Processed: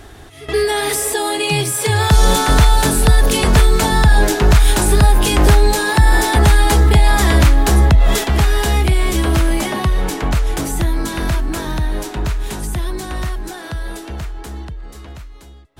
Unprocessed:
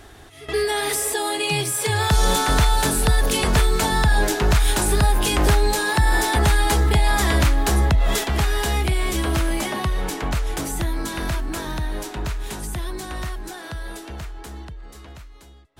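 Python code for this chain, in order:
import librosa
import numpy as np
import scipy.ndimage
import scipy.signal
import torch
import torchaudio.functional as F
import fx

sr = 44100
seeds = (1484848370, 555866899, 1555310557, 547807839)

y = fx.low_shelf(x, sr, hz=430.0, db=3.5)
y = F.gain(torch.from_numpy(y), 4.0).numpy()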